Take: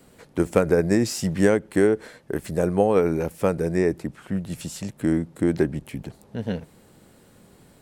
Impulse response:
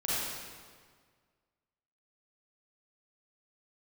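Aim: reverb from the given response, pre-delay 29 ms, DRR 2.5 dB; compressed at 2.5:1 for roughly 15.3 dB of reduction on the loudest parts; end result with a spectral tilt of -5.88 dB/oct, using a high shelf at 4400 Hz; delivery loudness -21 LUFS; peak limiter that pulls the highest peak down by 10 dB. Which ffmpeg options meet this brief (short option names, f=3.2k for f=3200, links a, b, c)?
-filter_complex "[0:a]highshelf=f=4.4k:g=-3,acompressor=threshold=-38dB:ratio=2.5,alimiter=level_in=4.5dB:limit=-24dB:level=0:latency=1,volume=-4.5dB,asplit=2[a][b];[1:a]atrim=start_sample=2205,adelay=29[c];[b][c]afir=irnorm=-1:irlink=0,volume=-10.5dB[d];[a][d]amix=inputs=2:normalize=0,volume=18dB"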